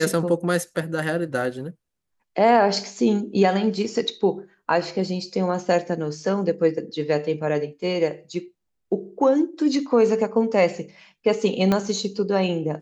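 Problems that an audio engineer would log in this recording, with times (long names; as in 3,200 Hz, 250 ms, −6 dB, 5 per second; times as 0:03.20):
0:11.72: click −9 dBFS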